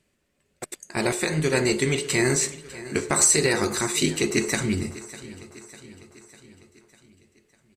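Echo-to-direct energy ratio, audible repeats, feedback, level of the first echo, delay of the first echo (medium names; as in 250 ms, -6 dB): -16.0 dB, 4, 56%, -17.5 dB, 600 ms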